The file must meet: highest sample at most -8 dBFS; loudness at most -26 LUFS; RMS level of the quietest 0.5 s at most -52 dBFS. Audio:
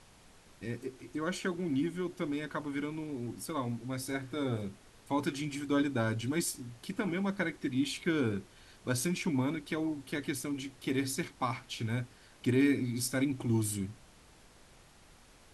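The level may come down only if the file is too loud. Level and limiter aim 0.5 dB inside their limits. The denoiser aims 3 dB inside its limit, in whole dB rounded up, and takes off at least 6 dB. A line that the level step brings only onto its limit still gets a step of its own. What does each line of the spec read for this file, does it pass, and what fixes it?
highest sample -17.0 dBFS: pass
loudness -34.5 LUFS: pass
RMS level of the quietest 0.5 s -59 dBFS: pass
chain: none needed

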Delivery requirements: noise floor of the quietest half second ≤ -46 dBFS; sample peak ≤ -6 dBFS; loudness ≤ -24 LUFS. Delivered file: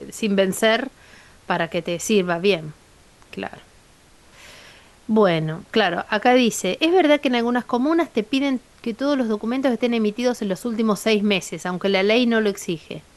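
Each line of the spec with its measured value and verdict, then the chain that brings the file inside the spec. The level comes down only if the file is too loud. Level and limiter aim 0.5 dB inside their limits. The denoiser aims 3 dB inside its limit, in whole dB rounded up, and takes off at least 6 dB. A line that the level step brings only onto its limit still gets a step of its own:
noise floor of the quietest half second -52 dBFS: pass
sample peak -5.0 dBFS: fail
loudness -20.5 LUFS: fail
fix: trim -4 dB

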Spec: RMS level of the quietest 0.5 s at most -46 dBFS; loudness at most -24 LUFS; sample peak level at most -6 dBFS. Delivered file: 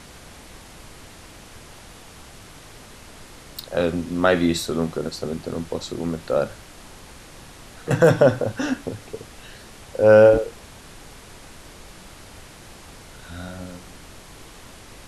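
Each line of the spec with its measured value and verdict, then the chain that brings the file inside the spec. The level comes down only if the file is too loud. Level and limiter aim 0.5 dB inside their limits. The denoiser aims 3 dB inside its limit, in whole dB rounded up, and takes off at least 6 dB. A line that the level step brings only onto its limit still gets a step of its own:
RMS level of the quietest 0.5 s -43 dBFS: fail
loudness -20.5 LUFS: fail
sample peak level -3.5 dBFS: fail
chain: trim -4 dB

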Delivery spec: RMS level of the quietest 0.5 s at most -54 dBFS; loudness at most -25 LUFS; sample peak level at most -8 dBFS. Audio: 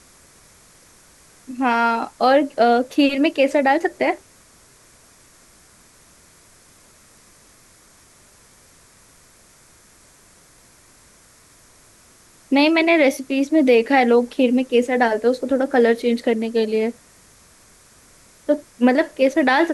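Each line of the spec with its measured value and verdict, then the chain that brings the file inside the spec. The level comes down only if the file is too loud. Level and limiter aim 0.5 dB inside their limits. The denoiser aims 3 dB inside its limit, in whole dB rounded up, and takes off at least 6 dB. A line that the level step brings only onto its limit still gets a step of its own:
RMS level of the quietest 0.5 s -51 dBFS: fail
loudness -18.0 LUFS: fail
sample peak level -5.5 dBFS: fail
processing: trim -7.5 dB

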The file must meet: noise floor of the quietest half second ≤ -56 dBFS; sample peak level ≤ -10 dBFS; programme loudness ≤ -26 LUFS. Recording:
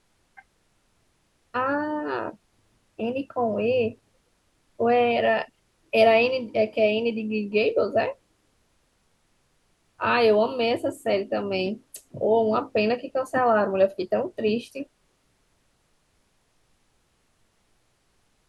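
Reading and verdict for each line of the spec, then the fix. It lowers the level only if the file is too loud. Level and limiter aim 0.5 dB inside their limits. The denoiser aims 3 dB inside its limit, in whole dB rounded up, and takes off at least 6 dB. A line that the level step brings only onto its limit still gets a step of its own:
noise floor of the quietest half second -67 dBFS: pass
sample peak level -6.5 dBFS: fail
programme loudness -24.0 LUFS: fail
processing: trim -2.5 dB; peak limiter -10.5 dBFS

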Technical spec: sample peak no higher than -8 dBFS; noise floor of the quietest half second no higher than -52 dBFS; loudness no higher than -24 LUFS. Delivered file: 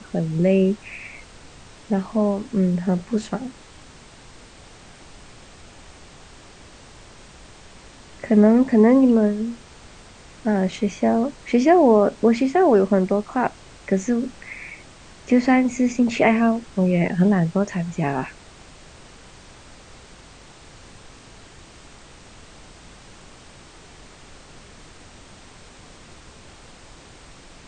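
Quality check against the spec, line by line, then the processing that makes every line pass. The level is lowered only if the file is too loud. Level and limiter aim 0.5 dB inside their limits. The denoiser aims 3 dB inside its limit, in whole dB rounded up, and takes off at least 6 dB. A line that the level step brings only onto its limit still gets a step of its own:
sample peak -5.0 dBFS: fail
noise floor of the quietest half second -46 dBFS: fail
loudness -19.5 LUFS: fail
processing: noise reduction 6 dB, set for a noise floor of -46 dBFS; trim -5 dB

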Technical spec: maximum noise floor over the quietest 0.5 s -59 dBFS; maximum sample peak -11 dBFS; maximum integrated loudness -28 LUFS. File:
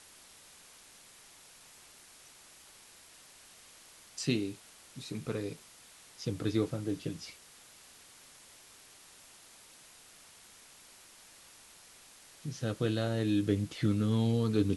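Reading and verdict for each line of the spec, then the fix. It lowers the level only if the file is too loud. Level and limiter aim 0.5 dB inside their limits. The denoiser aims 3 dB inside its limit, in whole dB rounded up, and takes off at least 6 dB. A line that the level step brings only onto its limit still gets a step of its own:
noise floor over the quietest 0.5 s -57 dBFS: fail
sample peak -15.5 dBFS: pass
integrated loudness -33.5 LUFS: pass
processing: noise reduction 6 dB, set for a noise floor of -57 dBFS

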